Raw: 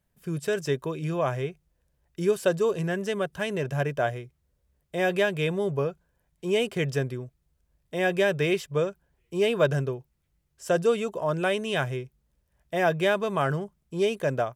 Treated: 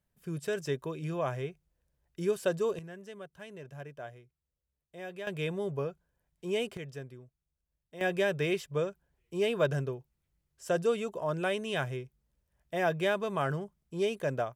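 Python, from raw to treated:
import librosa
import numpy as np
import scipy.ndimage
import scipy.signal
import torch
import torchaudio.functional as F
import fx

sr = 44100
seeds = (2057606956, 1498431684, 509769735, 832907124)

y = fx.gain(x, sr, db=fx.steps((0.0, -6.0), (2.79, -17.5), (5.27, -7.0), (6.77, -15.5), (8.01, -5.5)))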